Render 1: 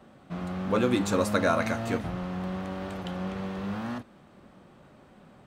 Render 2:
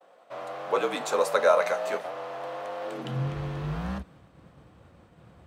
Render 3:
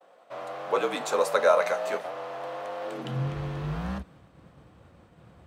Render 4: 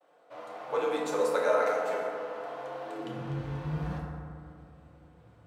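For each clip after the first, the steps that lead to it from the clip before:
frequency shifter −48 Hz; high-pass filter sweep 600 Hz → 63 Hz, 0:02.83–0:03.34; downward expander −50 dBFS
no processing that can be heard
feedback delay network reverb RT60 2.3 s, low-frequency decay 1.1×, high-frequency decay 0.35×, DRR −3 dB; level −9 dB

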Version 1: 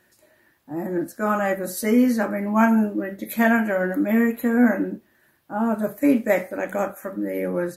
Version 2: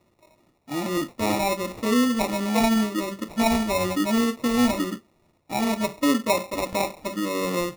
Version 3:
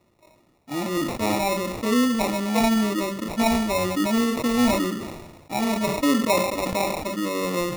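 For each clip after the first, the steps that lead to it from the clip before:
high shelf with overshoot 1,600 Hz −10.5 dB, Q 1.5; in parallel at +1.5 dB: downward compressor, threshold −25 dBFS, peak gain reduction 13 dB; on the sum: decimation without filtering 28×; level −6 dB
level that may fall only so fast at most 45 dB per second

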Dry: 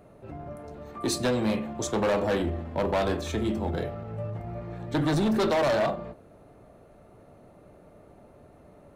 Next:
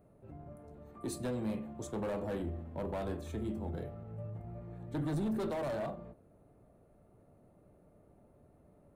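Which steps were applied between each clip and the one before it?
drawn EQ curve 160 Hz 0 dB, 5,600 Hz −12 dB, 9,000 Hz −2 dB
level −8 dB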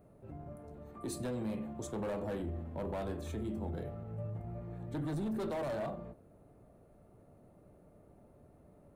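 brickwall limiter −34 dBFS, peak gain reduction 5.5 dB
level +2.5 dB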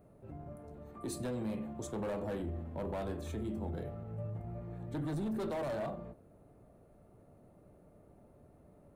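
no processing that can be heard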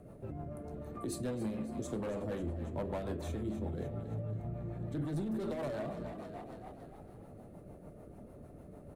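on a send: echo with shifted repeats 276 ms, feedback 53%, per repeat +32 Hz, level −12 dB
on the sum: downward compressor 2 to 1, threshold −50 dBFS, peak gain reduction 9.5 dB
rotating-speaker cabinet horn 6.7 Hz
level +10 dB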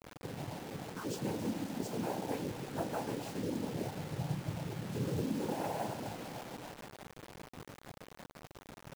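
single-tap delay 549 ms −22 dB
cochlear-implant simulation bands 8
bit reduction 8 bits
level +1 dB

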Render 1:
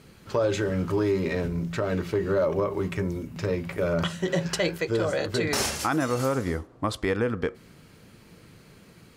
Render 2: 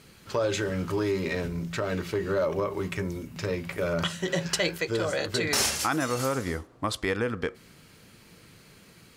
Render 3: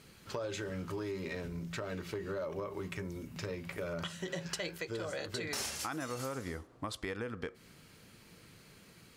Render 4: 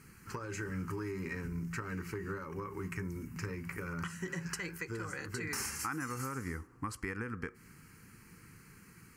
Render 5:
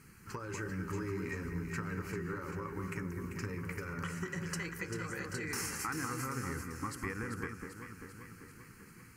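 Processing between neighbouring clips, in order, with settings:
tilt shelving filter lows −3.5 dB, about 1,400 Hz
downward compressor 2.5 to 1, threshold −34 dBFS, peak gain reduction 9 dB; level −4.5 dB
phaser with its sweep stopped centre 1,500 Hz, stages 4; level +3.5 dB
delay that swaps between a low-pass and a high-pass 196 ms, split 1,700 Hz, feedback 77%, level −5 dB; level −1 dB

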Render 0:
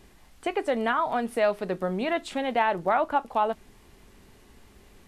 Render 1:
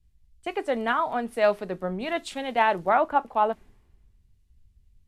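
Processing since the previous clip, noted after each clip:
multiband upward and downward expander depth 100%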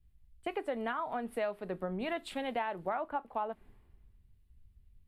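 parametric band 6,100 Hz −14 dB 0.78 octaves
downward compressor 6 to 1, threshold −30 dBFS, peak gain reduction 13.5 dB
level −2 dB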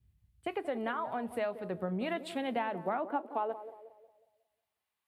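feedback echo with a band-pass in the loop 181 ms, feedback 47%, band-pass 440 Hz, level −11.5 dB
high-pass filter sweep 89 Hz → 950 Hz, 0:01.59–0:04.99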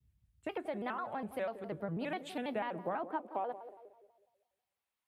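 pitch modulation by a square or saw wave square 6.1 Hz, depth 160 cents
level −3.5 dB

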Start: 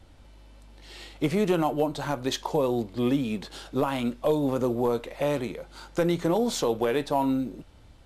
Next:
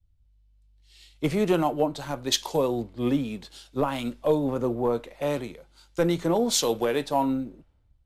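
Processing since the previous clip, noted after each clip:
multiband upward and downward expander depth 100%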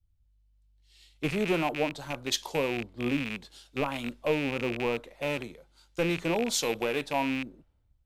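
loose part that buzzes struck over −34 dBFS, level −18 dBFS
level −5 dB

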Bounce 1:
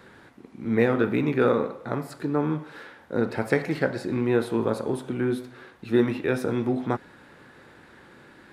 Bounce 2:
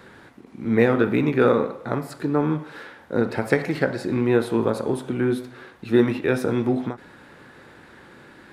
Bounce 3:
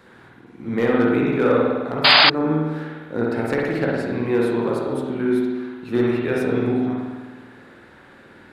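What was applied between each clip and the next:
every ending faded ahead of time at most 220 dB per second; level +3.5 dB
gain into a clipping stage and back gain 8.5 dB; spring reverb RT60 1.4 s, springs 51 ms, chirp 20 ms, DRR −2.5 dB; sound drawn into the spectrogram noise, 0:02.04–0:02.30, 560–5,000 Hz −8 dBFS; level −4 dB

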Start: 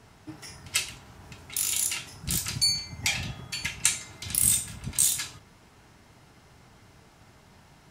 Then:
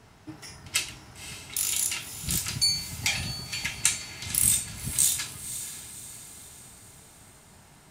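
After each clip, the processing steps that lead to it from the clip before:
feedback delay with all-pass diffusion 542 ms, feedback 49%, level −11.5 dB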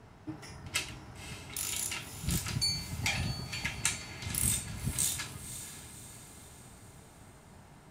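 high-shelf EQ 2,200 Hz −10 dB
level +1 dB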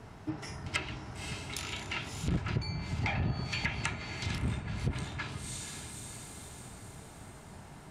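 treble cut that deepens with the level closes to 1,600 Hz, closed at −29.5 dBFS
saturating transformer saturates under 240 Hz
level +5 dB

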